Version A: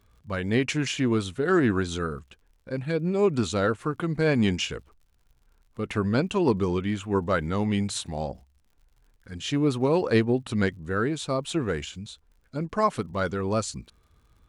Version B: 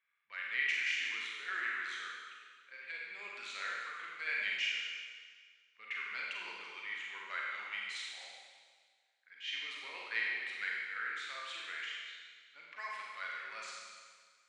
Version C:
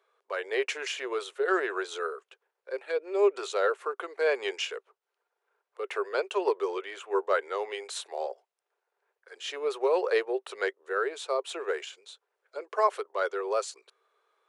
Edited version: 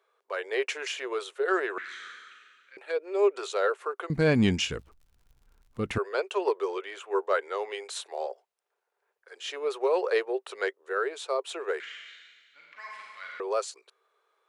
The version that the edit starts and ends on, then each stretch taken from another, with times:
C
0:01.78–0:02.77: punch in from B
0:04.10–0:05.98: punch in from A
0:11.80–0:13.40: punch in from B

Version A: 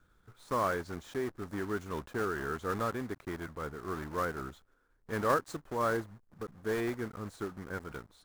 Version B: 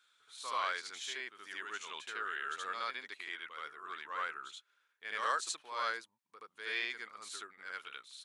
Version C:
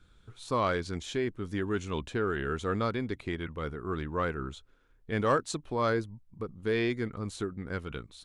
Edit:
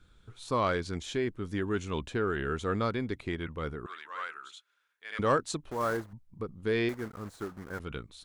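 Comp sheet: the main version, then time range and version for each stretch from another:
C
0:03.86–0:05.19: punch in from B
0:05.71–0:06.13: punch in from A
0:06.89–0:07.80: punch in from A

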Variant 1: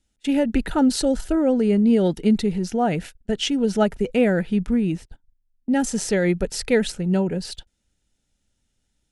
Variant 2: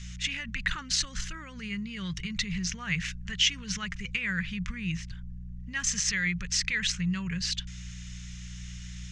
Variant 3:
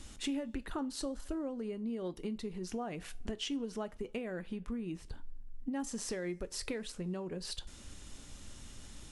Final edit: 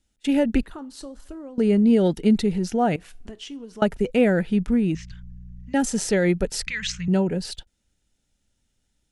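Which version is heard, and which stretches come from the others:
1
0:00.63–0:01.58: punch in from 3
0:02.96–0:03.82: punch in from 3
0:04.95–0:05.74: punch in from 2
0:06.67–0:07.08: punch in from 2

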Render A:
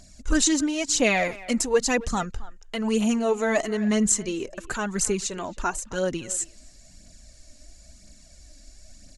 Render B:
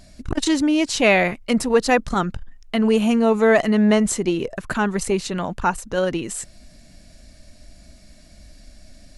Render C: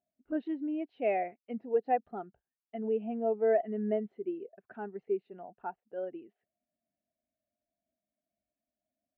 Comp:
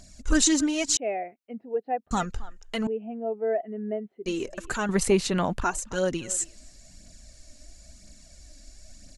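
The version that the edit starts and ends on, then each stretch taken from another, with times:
A
0:00.97–0:02.11: punch in from C
0:02.87–0:04.26: punch in from C
0:04.89–0:05.64: punch in from B

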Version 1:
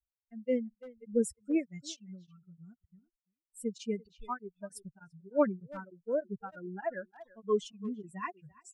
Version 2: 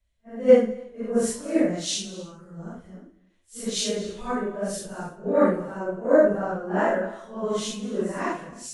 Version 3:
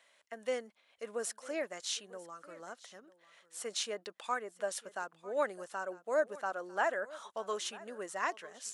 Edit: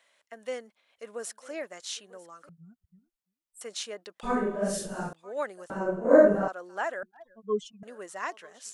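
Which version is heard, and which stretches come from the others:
3
0:02.49–0:03.61: punch in from 1
0:04.23–0:05.13: punch in from 2
0:05.70–0:06.48: punch in from 2
0:07.03–0:07.83: punch in from 1

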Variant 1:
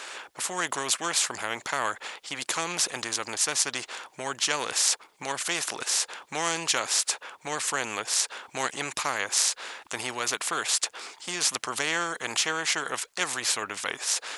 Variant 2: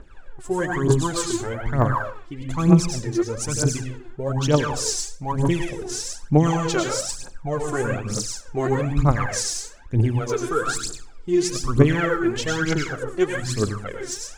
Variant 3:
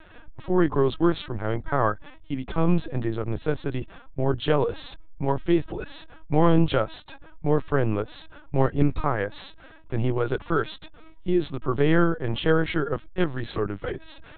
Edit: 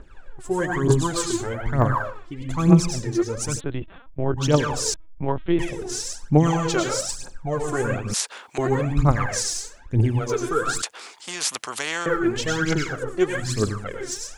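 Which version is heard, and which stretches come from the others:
2
0:03.58–0:04.39: punch in from 3, crossfade 0.06 s
0:04.94–0:05.59: punch in from 3
0:08.14–0:08.58: punch in from 1
0:10.82–0:12.06: punch in from 1

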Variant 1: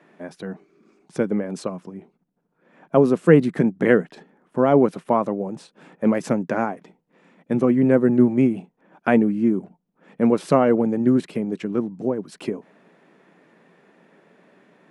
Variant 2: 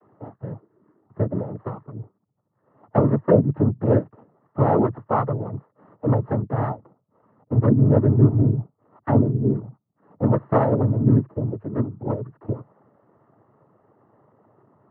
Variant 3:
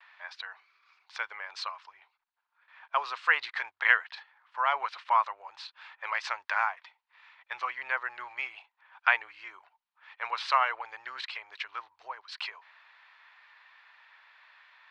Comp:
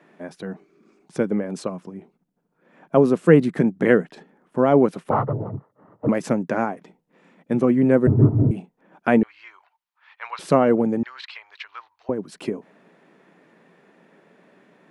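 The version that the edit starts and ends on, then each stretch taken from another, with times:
1
0:05.11–0:06.09: punch in from 2
0:08.07–0:08.51: punch in from 2
0:09.23–0:10.39: punch in from 3
0:11.03–0:12.09: punch in from 3

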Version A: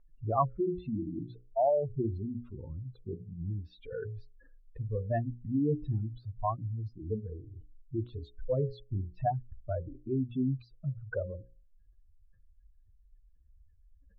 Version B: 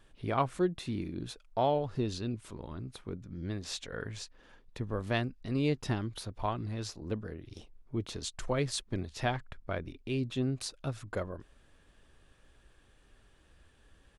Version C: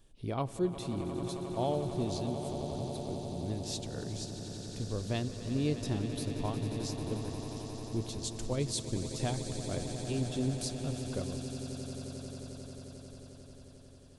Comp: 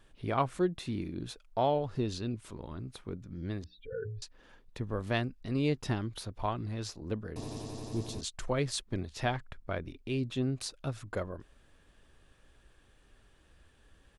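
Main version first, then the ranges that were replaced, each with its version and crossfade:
B
0:03.64–0:04.22: punch in from A
0:07.36–0:08.21: punch in from C

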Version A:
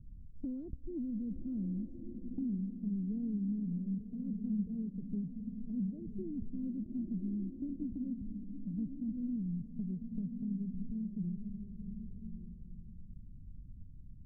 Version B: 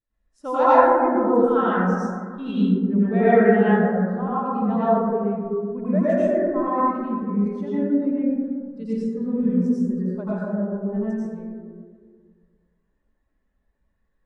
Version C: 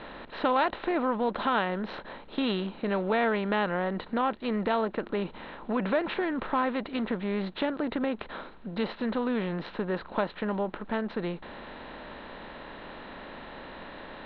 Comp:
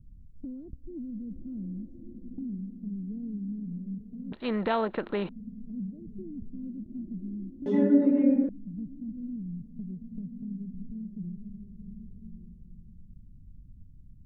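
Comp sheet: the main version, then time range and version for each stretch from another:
A
0:04.32–0:05.29: punch in from C
0:07.66–0:08.49: punch in from B

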